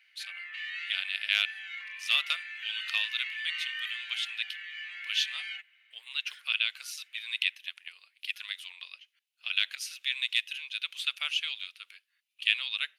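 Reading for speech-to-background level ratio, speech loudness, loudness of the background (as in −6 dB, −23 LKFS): 6.0 dB, −31.5 LKFS, −37.5 LKFS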